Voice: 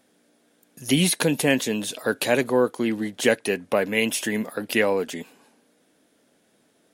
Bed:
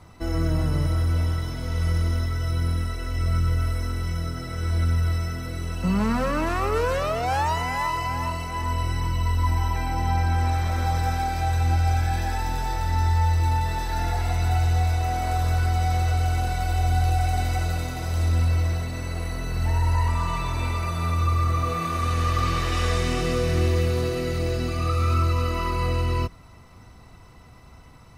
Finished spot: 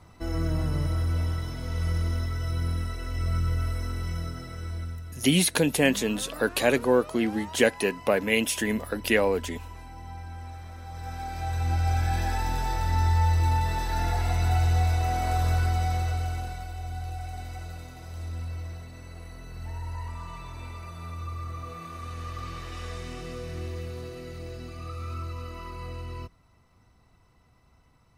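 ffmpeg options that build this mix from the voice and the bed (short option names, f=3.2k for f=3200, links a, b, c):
-filter_complex "[0:a]adelay=4350,volume=-1.5dB[a];[1:a]volume=12dB,afade=t=out:st=4.18:d=0.85:silence=0.211349,afade=t=in:st=10.88:d=1.33:silence=0.158489,afade=t=out:st=15.5:d=1.22:silence=0.251189[b];[a][b]amix=inputs=2:normalize=0"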